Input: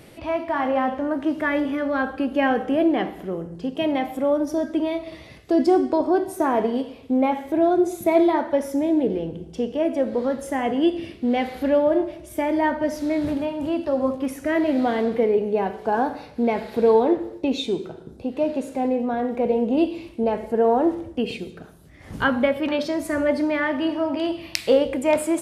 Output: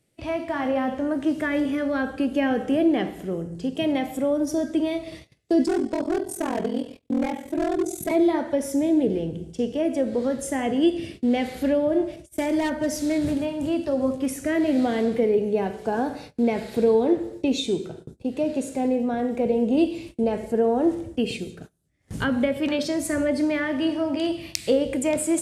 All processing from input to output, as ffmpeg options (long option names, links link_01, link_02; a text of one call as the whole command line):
ffmpeg -i in.wav -filter_complex "[0:a]asettb=1/sr,asplit=3[link_01][link_02][link_03];[link_01]atrim=end=5.644[link_04];[link_02]atrim=start=5.64:end=8.11,asetpts=PTS-STARTPTS,afade=type=in:duration=0.004:curve=qsin,afade=type=out:start_time=2.466:duration=0.004:curve=qsin,aeval=exprs='val(0)*sin(2*PI*21*n/s)':channel_layout=same,volume=18dB,asoftclip=hard,volume=-18dB[link_05];[link_03]atrim=start=8.106[link_06];[link_04][link_05]acrossfade=duration=0.004:curve1=hsin:curve2=qsin[link_07];[link_07][link_06]acrossfade=duration=0.004:curve1=qsin:curve2=hsin,asettb=1/sr,asplit=3[link_08][link_09][link_10];[link_08]atrim=end=12.164[link_11];[link_09]atrim=start=12.16:end=13.18,asetpts=PTS-STARTPTS,afade=type=in:duration=0.004:curve=qsin,afade=type=out:start_time=1.016:duration=0.004:curve=qsin,agate=range=-33dB:threshold=-38dB:ratio=3:release=100:detection=peak,highshelf=frequency=4200:gain=4,volume=16.5dB,asoftclip=hard,volume=-16.5dB[link_12];[link_10]atrim=start=13.176[link_13];[link_11][link_12]acrossfade=duration=0.004:curve1=hsin:curve2=qsin[link_14];[link_14][link_13]acrossfade=duration=0.004:curve1=qsin:curve2=hsin,agate=range=-25dB:threshold=-40dB:ratio=16:detection=peak,equalizer=frequency=125:width_type=o:width=1:gain=4,equalizer=frequency=1000:width_type=o:width=1:gain=-6,equalizer=frequency=8000:width_type=o:width=1:gain=10,acrossover=split=460[link_15][link_16];[link_16]acompressor=threshold=-24dB:ratio=6[link_17];[link_15][link_17]amix=inputs=2:normalize=0" out.wav